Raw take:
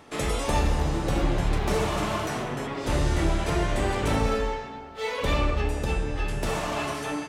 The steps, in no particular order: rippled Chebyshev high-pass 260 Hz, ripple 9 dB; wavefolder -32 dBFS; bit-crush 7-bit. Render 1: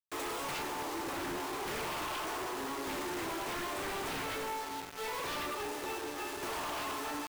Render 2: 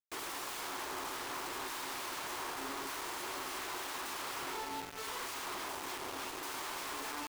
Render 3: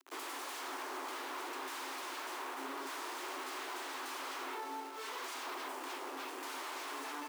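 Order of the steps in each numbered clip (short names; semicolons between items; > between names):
rippled Chebyshev high-pass > bit-crush > wavefolder; wavefolder > rippled Chebyshev high-pass > bit-crush; bit-crush > wavefolder > rippled Chebyshev high-pass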